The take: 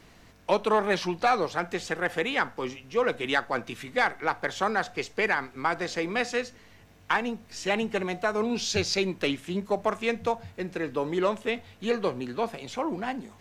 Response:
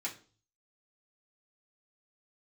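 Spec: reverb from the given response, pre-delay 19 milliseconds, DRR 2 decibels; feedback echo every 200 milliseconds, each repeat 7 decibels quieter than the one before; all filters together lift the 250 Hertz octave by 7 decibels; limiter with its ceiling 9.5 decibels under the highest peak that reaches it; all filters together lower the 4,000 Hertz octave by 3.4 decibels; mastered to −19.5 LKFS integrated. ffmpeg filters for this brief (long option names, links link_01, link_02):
-filter_complex "[0:a]equalizer=frequency=250:width_type=o:gain=9,equalizer=frequency=4000:width_type=o:gain=-4.5,alimiter=limit=-18.5dB:level=0:latency=1,aecho=1:1:200|400|600|800|1000:0.447|0.201|0.0905|0.0407|0.0183,asplit=2[link_01][link_02];[1:a]atrim=start_sample=2205,adelay=19[link_03];[link_02][link_03]afir=irnorm=-1:irlink=0,volume=-3.5dB[link_04];[link_01][link_04]amix=inputs=2:normalize=0,volume=7dB"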